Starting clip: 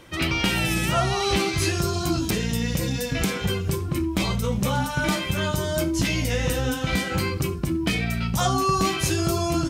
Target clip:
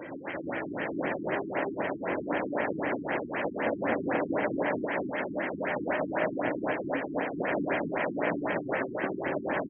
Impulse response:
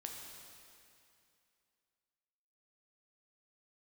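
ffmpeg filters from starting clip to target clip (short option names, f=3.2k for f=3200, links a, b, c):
-filter_complex "[0:a]asettb=1/sr,asplit=3[a][b][c];[a]atrim=end=1.644[d];[b]atrim=start=1.64:end=2.55,asetpts=PTS-STARTPTS,afade=t=in:d=0.004:c=qsin,afade=t=out:st=0.906:d=0.004:c=qsin,aecho=1:1:3.9:0.51,atrim=end_sample=40131[e];[c]atrim=start=2.546[f];[d][e]acrossfade=d=0.004:c1=hsin:c2=qsin[g];[g][f]acrossfade=d=0.004:c1=qsin:c2=hsin,volume=24.5dB,asoftclip=hard,volume=-24.5dB,asplit=2[h][i];[i]adelay=221,lowpass=f=840:p=1,volume=-5.5dB,asplit=2[j][k];[k]adelay=221,lowpass=f=840:p=1,volume=0.15,asplit=2[l][m];[m]adelay=221,lowpass=f=840:p=1,volume=0.15[n];[j][l][n]amix=inputs=3:normalize=0[o];[h][o]amix=inputs=2:normalize=0,aeval=exprs='(mod(33.5*val(0)+1,2)-1)/33.5':c=same,highpass=220,equalizer=f=290:t=q:w=4:g=6,equalizer=f=590:t=q:w=4:g=7,equalizer=f=1.2k:t=q:w=4:g=-7,equalizer=f=1.8k:t=q:w=4:g=5,equalizer=f=2.9k:t=q:w=4:g=-10,lowpass=f=6.4k:w=0.5412,lowpass=f=6.4k:w=1.3066,asplit=2[p][q];[q]aecho=0:1:230|460|690|920|1150|1380|1610:0.501|0.276|0.152|0.0834|0.0459|0.0252|0.0139[r];[p][r]amix=inputs=2:normalize=0,afftfilt=real='re*lt(b*sr/1024,370*pow(3300/370,0.5+0.5*sin(2*PI*3.9*pts/sr)))':imag='im*lt(b*sr/1024,370*pow(3300/370,0.5+0.5*sin(2*PI*3.9*pts/sr)))':win_size=1024:overlap=0.75,volume=7.5dB"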